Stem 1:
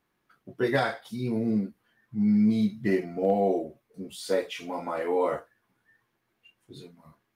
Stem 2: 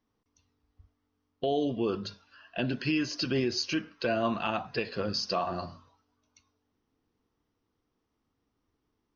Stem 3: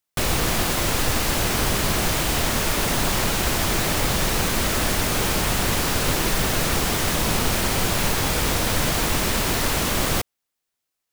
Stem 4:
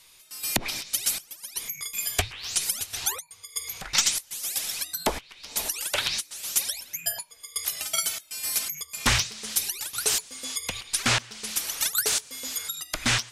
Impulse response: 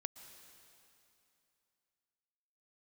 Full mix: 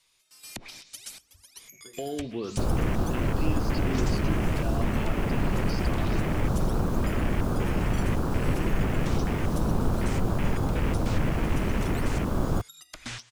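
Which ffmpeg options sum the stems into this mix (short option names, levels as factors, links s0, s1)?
-filter_complex "[0:a]acompressor=threshold=0.0251:ratio=6,adelay=1250,volume=0.119[s0];[1:a]adelay=550,volume=0.708[s1];[2:a]afwtdn=0.0562,adelay=2400,volume=1[s2];[3:a]lowpass=9400,volume=0.251[s3];[s0][s1][s2][s3]amix=inputs=4:normalize=0,acrossover=split=380[s4][s5];[s5]acompressor=threshold=0.0158:ratio=3[s6];[s4][s6]amix=inputs=2:normalize=0"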